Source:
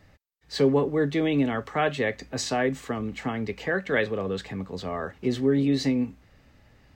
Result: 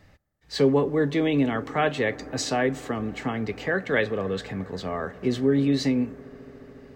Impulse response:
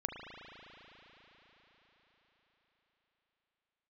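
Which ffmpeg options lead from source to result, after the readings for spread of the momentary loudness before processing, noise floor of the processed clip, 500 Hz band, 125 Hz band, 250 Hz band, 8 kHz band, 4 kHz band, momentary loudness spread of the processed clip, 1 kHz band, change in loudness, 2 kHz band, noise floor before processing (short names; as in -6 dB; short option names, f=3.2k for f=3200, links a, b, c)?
10 LU, -56 dBFS, +1.0 dB, +1.0 dB, +1.0 dB, +1.0 dB, +1.0 dB, 10 LU, +1.0 dB, +1.0 dB, +1.0 dB, -59 dBFS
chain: -filter_complex "[0:a]asplit=2[a][b];[1:a]atrim=start_sample=2205,asetrate=22491,aresample=44100[c];[b][c]afir=irnorm=-1:irlink=0,volume=-20dB[d];[a][d]amix=inputs=2:normalize=0"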